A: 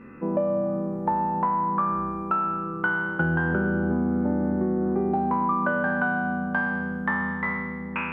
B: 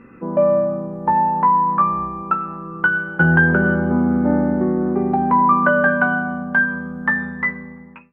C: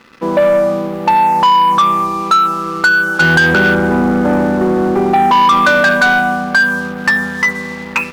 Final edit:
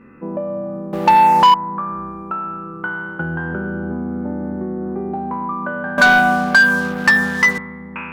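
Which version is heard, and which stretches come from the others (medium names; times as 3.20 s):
A
0.93–1.54 s: from C
5.98–7.58 s: from C
not used: B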